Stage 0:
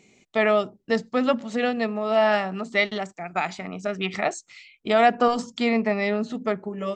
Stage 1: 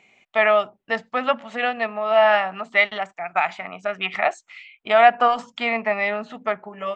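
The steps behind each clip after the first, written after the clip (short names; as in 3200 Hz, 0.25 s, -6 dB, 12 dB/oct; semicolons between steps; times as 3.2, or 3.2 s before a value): band shelf 1400 Hz +14.5 dB 2.8 oct; gain -9 dB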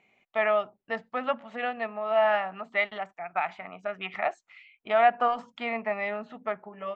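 LPF 2100 Hz 6 dB/oct; gain -6.5 dB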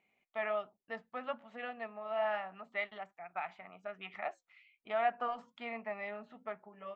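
flange 1.2 Hz, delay 3.3 ms, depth 2.5 ms, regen -79%; gain -6.5 dB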